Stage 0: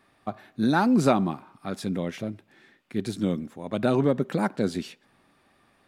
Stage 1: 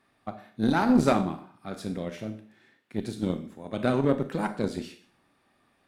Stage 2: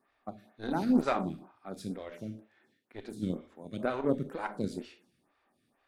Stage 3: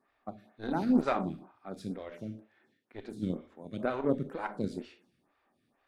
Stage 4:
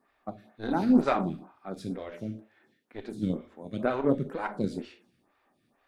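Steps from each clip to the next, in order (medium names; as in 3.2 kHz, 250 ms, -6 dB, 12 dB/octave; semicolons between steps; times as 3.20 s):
Schroeder reverb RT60 0.48 s, combs from 25 ms, DRR 6 dB; Chebyshev shaper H 3 -24 dB, 4 -22 dB, 7 -30 dB, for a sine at -7 dBFS; trim -1 dB
lamp-driven phase shifter 2.1 Hz; trim -3.5 dB
treble shelf 5.7 kHz -8.5 dB
flange 0.68 Hz, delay 3.8 ms, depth 6.2 ms, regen -66%; trim +8 dB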